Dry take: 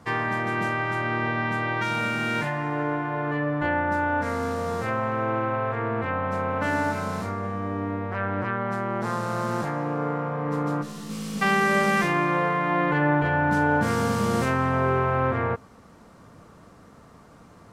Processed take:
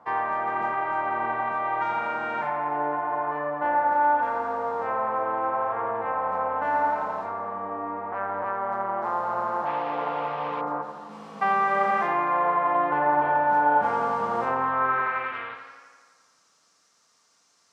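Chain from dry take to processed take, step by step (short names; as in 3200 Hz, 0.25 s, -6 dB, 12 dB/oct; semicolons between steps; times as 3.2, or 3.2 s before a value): band-pass sweep 860 Hz -> 5800 Hz, 14.59–15.86; on a send: tape echo 86 ms, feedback 74%, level -9 dB, low-pass 5300 Hz; 9.65–10.6 on the sum: band noise 420–2800 Hz -49 dBFS; gain +5.5 dB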